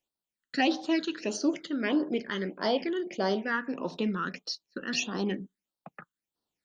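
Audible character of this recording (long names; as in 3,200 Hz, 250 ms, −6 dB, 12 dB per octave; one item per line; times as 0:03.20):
phaser sweep stages 8, 1.6 Hz, lowest notch 680–2,300 Hz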